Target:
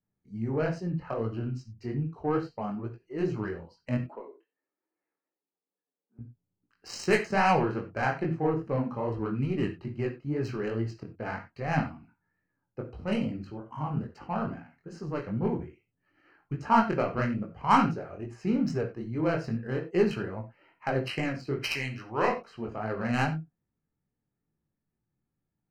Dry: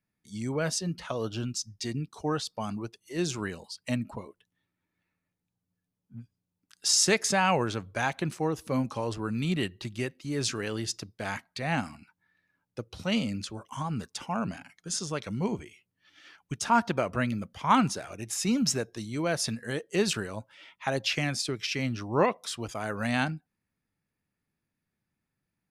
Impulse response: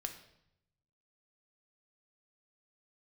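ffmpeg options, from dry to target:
-filter_complex "[0:a]asettb=1/sr,asplit=3[link_01][link_02][link_03];[link_01]atrim=end=3.974[link_04];[link_02]atrim=start=3.97:end=6.19,asetpts=PTS-STARTPTS,afade=type=in:duration=0.004:curve=qsin,afade=type=out:start_time=2.216:duration=0.004:curve=qsin,highpass=frequency=340:width=0.5412,highpass=frequency=340:width=1.3066[link_05];[link_03]atrim=start=6.186[link_06];[link_04][link_05]acrossfade=duration=0.004:curve1=hsin:curve2=qsin[link_07];[link_07][link_06]acrossfade=duration=0.004:curve1=qsin:curve2=hsin,asettb=1/sr,asplit=3[link_08][link_09][link_10];[link_08]atrim=end=21.624[link_11];[link_09]atrim=start=21.62:end=22.28,asetpts=PTS-STARTPTS,afade=type=in:duration=0.004:curve=qsin,afade=type=out:start_time=0.656:duration=0.004:curve=qsin,tiltshelf=frequency=1100:gain=-9.5[link_12];[link_10]atrim=start=22.276[link_13];[link_11][link_12]acrossfade=duration=0.004:curve1=hsin:curve2=qsin[link_14];[link_14][link_13]acrossfade=duration=0.004:curve1=qsin:curve2=hsin,adynamicsmooth=sensitivity=1:basefreq=1100,flanger=delay=17:depth=7.1:speed=2.4,asuperstop=centerf=3500:order=20:qfactor=5.1[link_15];[1:a]atrim=start_sample=2205,atrim=end_sample=4410[link_16];[link_15][link_16]afir=irnorm=-1:irlink=0,volume=6.5dB"

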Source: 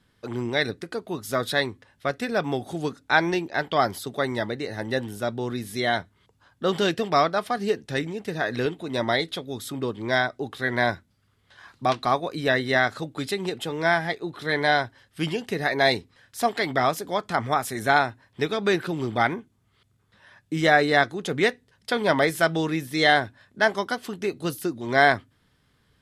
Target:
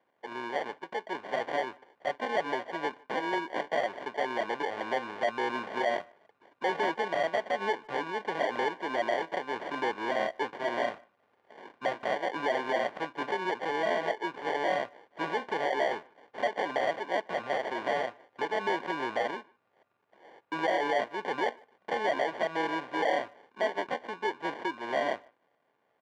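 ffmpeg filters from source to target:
ffmpeg -i in.wav -filter_complex "[0:a]dynaudnorm=framelen=230:gausssize=11:maxgain=11.5dB,alimiter=limit=-10dB:level=0:latency=1:release=167,acrusher=samples=34:mix=1:aa=0.000001,asoftclip=type=tanh:threshold=-18dB,highpass=580,lowpass=2200,asplit=2[link_01][link_02];[link_02]adelay=150,highpass=300,lowpass=3400,asoftclip=type=hard:threshold=-24.5dB,volume=-26dB[link_03];[link_01][link_03]amix=inputs=2:normalize=0" out.wav

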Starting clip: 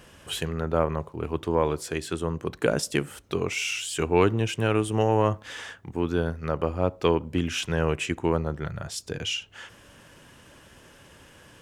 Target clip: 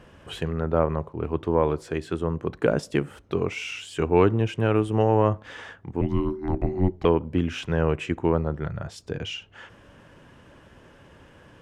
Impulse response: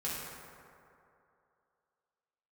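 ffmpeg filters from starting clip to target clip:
-filter_complex "[0:a]lowpass=frequency=1400:poles=1,asettb=1/sr,asplit=3[link_01][link_02][link_03];[link_01]atrim=end=6.014[link_04];[link_02]atrim=start=6.01:end=7.05,asetpts=PTS-STARTPTS,afade=type=in:duration=0.004:curve=qsin,afade=type=out:start_time=1.036:duration=0.004:curve=qsin,afreqshift=-460[link_05];[link_03]atrim=start=7.046[link_06];[link_04][link_05]acrossfade=duration=0.004:curve1=hsin:curve2=qsin[link_07];[link_07][link_06]acrossfade=duration=0.004:curve1=qsin:curve2=hsin,volume=2.5dB"

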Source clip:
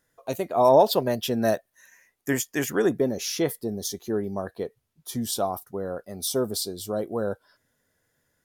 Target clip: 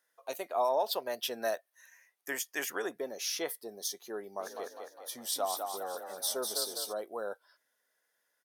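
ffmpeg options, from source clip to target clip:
ffmpeg -i in.wav -filter_complex "[0:a]alimiter=limit=-13.5dB:level=0:latency=1:release=232,highpass=640,bandreject=frequency=7100:width=11,asplit=3[link_01][link_02][link_03];[link_01]afade=type=out:start_time=4.39:duration=0.02[link_04];[link_02]asplit=8[link_05][link_06][link_07][link_08][link_09][link_10][link_11][link_12];[link_06]adelay=203,afreqshift=32,volume=-5dB[link_13];[link_07]adelay=406,afreqshift=64,volume=-10.4dB[link_14];[link_08]adelay=609,afreqshift=96,volume=-15.7dB[link_15];[link_09]adelay=812,afreqshift=128,volume=-21.1dB[link_16];[link_10]adelay=1015,afreqshift=160,volume=-26.4dB[link_17];[link_11]adelay=1218,afreqshift=192,volume=-31.8dB[link_18];[link_12]adelay=1421,afreqshift=224,volume=-37.1dB[link_19];[link_05][link_13][link_14][link_15][link_16][link_17][link_18][link_19]amix=inputs=8:normalize=0,afade=type=in:start_time=4.39:duration=0.02,afade=type=out:start_time=6.92:duration=0.02[link_20];[link_03]afade=type=in:start_time=6.92:duration=0.02[link_21];[link_04][link_20][link_21]amix=inputs=3:normalize=0,volume=-4dB" out.wav

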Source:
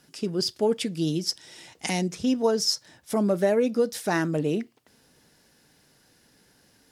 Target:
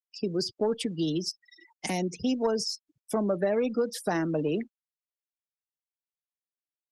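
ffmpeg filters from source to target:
ffmpeg -i in.wav -filter_complex "[0:a]asoftclip=type=tanh:threshold=-12.5dB,afftfilt=real='re*gte(hypot(re,im),0.0158)':imag='im*gte(hypot(re,im),0.0158)':win_size=1024:overlap=0.75,acrossover=split=120|240|810|5700[link_01][link_02][link_03][link_04][link_05];[link_01]acompressor=threshold=-49dB:ratio=4[link_06];[link_02]acompressor=threshold=-40dB:ratio=4[link_07];[link_03]acompressor=threshold=-28dB:ratio=4[link_08];[link_04]acompressor=threshold=-35dB:ratio=4[link_09];[link_05]acompressor=threshold=-39dB:ratio=4[link_10];[link_06][link_07][link_08][link_09][link_10]amix=inputs=5:normalize=0,volume=1.5dB" -ar 48000 -c:a libopus -b:a 20k out.opus

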